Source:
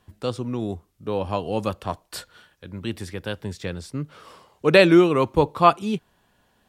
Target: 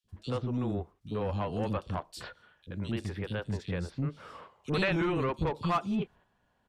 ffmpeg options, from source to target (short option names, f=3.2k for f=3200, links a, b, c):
-filter_complex "[0:a]aemphasis=mode=reproduction:type=50fm,agate=range=-8dB:threshold=-48dB:ratio=16:detection=peak,acrossover=split=330|3500[a][b][c];[a]adelay=40[d];[b]adelay=80[e];[d][e][c]amix=inputs=3:normalize=0,acrossover=split=1200[f][g];[f]asoftclip=type=tanh:threshold=-23dB[h];[h][g]amix=inputs=2:normalize=0,acrossover=split=270[i][j];[j]acompressor=threshold=-41dB:ratio=1.5[k];[i][k]amix=inputs=2:normalize=0"